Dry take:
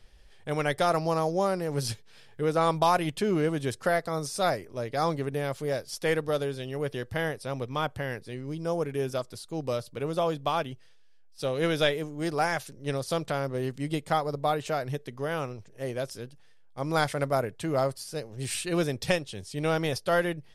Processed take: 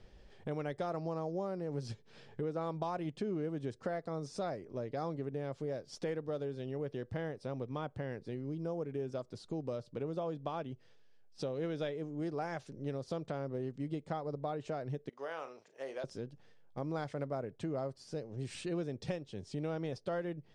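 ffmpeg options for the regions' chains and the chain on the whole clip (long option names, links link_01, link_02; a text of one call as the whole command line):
ffmpeg -i in.wav -filter_complex "[0:a]asettb=1/sr,asplit=3[link_01][link_02][link_03];[link_01]atrim=end=15.094[link_04];[link_02]atrim=start=15.09:end=16.04,asetpts=PTS-STARTPTS,afade=type=in:duration=0.004:curve=qsin,afade=type=out:start_time=0.946:duration=0.004:curve=qsin,highpass=760,asplit=2[link_05][link_06];[link_06]adelay=37,volume=-11dB[link_07];[link_05][link_07]amix=inputs=2:normalize=0,atrim=end_sample=41895[link_08];[link_03]atrim=start=16.036[link_09];[link_04][link_08]acrossfade=duration=0.004:curve1=hsin:curve2=qsin[link_10];[link_10][link_09]acrossfade=duration=0.004:curve1=qsin:curve2=hsin,equalizer=frequency=260:width=0.3:gain=12.5,acompressor=threshold=-34dB:ratio=3,lowpass=frequency=7500:width=0.5412,lowpass=frequency=7500:width=1.3066,volume=-6dB" out.wav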